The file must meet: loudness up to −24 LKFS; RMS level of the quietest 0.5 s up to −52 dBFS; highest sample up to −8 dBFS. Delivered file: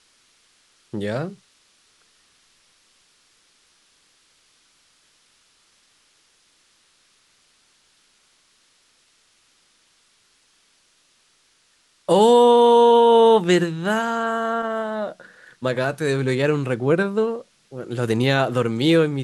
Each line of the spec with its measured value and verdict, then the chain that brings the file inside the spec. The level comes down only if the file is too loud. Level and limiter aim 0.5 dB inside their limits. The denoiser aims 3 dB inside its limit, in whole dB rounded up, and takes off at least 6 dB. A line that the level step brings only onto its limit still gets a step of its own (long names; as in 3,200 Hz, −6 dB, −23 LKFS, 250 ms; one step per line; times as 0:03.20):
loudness −18.5 LKFS: out of spec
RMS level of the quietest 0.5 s −62 dBFS: in spec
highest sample −5.0 dBFS: out of spec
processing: level −6 dB